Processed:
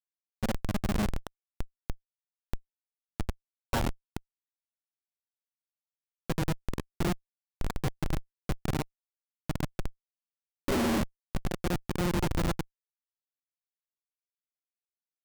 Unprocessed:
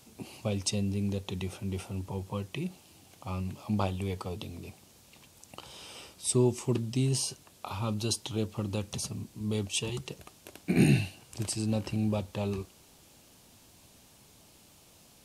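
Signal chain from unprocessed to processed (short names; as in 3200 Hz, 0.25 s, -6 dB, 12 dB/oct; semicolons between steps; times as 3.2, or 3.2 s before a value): gliding pitch shift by +11 st starting unshifted; comb 5.3 ms, depth 65%; grains 0.1 s, grains 20/s, spray 0.1 s; speaker cabinet 150–3000 Hz, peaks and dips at 890 Hz +6 dB, 1500 Hz +4 dB, 2500 Hz +8 dB; Schmitt trigger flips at -27 dBFS; gain +8 dB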